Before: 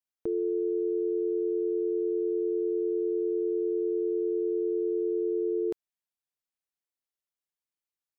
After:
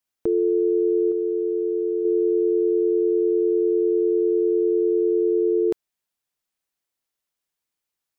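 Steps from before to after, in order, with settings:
0:01.11–0:02.05: dynamic equaliser 340 Hz, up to −4 dB, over −39 dBFS, Q 0.85
level +8.5 dB

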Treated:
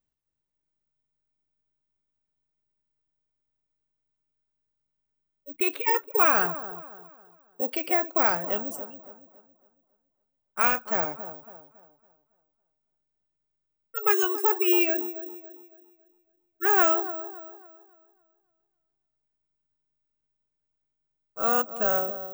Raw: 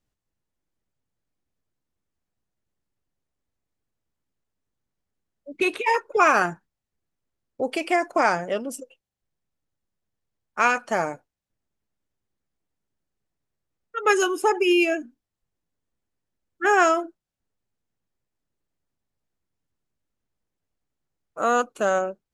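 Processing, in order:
delay with a low-pass on its return 278 ms, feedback 37%, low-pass 1,000 Hz, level −11 dB
bad sample-rate conversion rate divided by 2×, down filtered, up zero stuff
level −5.5 dB

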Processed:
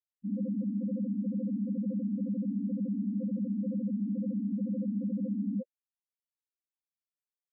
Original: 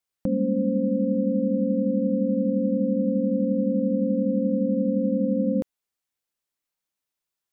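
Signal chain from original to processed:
spectral peaks only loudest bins 2
level −4.5 dB

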